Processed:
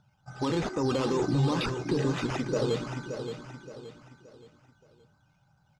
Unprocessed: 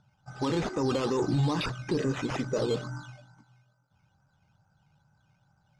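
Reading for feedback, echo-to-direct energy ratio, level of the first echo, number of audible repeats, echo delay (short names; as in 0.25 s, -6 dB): 38%, -7.5 dB, -8.0 dB, 4, 0.573 s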